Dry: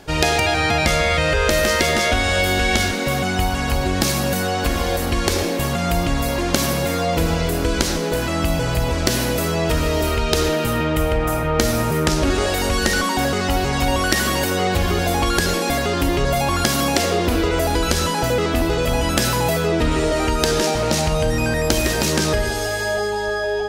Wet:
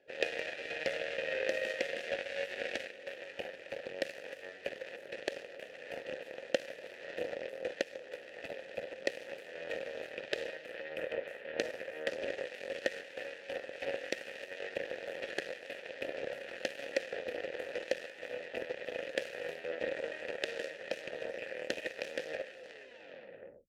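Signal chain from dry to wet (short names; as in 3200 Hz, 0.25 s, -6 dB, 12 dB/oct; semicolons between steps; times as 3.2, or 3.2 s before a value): tape stop at the end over 1.31 s; added harmonics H 3 -12 dB, 7 -24 dB, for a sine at -3.5 dBFS; vowel filter e; gain +2.5 dB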